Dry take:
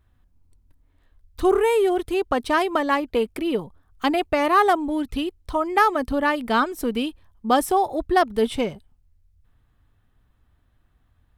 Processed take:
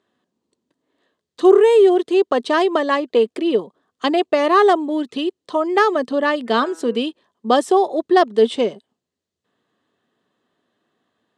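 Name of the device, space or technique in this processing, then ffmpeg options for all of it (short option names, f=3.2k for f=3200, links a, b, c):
television speaker: -filter_complex "[0:a]highpass=f=230:w=0.5412,highpass=f=230:w=1.3066,equalizer=f=280:t=q:w=4:g=-5,equalizer=f=400:t=q:w=4:g=3,equalizer=f=850:t=q:w=4:g=-7,equalizer=f=1.4k:t=q:w=4:g=-8,equalizer=f=2.3k:t=q:w=4:g=-9,equalizer=f=5.5k:t=q:w=4:g=-5,lowpass=f=7.3k:w=0.5412,lowpass=f=7.3k:w=1.3066,asplit=3[a][b][c];[a]afade=t=out:st=6.46:d=0.02[d];[b]bandreject=f=162.9:t=h:w=4,bandreject=f=325.8:t=h:w=4,bandreject=f=488.7:t=h:w=4,bandreject=f=651.6:t=h:w=4,bandreject=f=814.5:t=h:w=4,bandreject=f=977.4:t=h:w=4,bandreject=f=1.1403k:t=h:w=4,bandreject=f=1.3032k:t=h:w=4,bandreject=f=1.4661k:t=h:w=4,bandreject=f=1.629k:t=h:w=4,bandreject=f=1.7919k:t=h:w=4,bandreject=f=1.9548k:t=h:w=4,bandreject=f=2.1177k:t=h:w=4,bandreject=f=2.2806k:t=h:w=4,bandreject=f=2.4435k:t=h:w=4,bandreject=f=2.6064k:t=h:w=4,bandreject=f=2.7693k:t=h:w=4,afade=t=in:st=6.46:d=0.02,afade=t=out:st=6.96:d=0.02[e];[c]afade=t=in:st=6.96:d=0.02[f];[d][e][f]amix=inputs=3:normalize=0,volume=6.5dB"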